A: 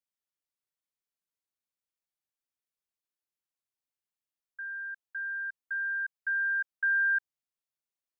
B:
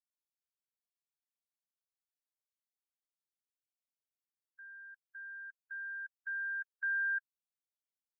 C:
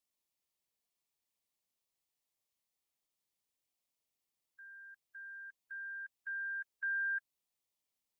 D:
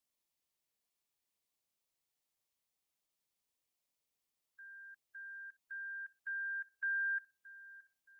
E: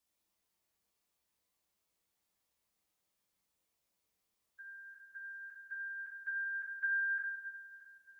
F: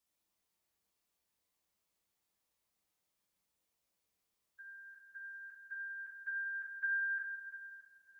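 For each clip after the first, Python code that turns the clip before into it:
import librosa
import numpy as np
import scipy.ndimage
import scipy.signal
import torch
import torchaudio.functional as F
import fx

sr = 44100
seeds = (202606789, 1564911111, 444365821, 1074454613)

y1 = fx.bin_expand(x, sr, power=1.5)
y1 = y1 * 10.0 ** (-7.0 / 20.0)
y2 = fx.peak_eq(y1, sr, hz=1500.0, db=-12.0, octaves=0.32)
y2 = y2 * 10.0 ** (7.0 / 20.0)
y3 = fx.echo_filtered(y2, sr, ms=623, feedback_pct=57, hz=1300.0, wet_db=-15.0)
y4 = fx.rev_fdn(y3, sr, rt60_s=1.2, lf_ratio=1.25, hf_ratio=0.45, size_ms=92.0, drr_db=-2.0)
y4 = y4 * 10.0 ** (1.5 / 20.0)
y5 = y4 + 10.0 ** (-13.5 / 20.0) * np.pad(y4, (int(341 * sr / 1000.0), 0))[:len(y4)]
y5 = y5 * 10.0 ** (-1.5 / 20.0)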